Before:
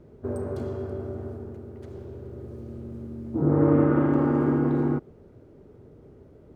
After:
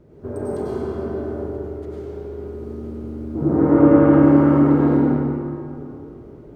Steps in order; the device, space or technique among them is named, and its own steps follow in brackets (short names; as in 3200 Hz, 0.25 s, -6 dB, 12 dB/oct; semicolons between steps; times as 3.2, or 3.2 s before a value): stairwell (reverb RT60 2.5 s, pre-delay 89 ms, DRR -7.5 dB)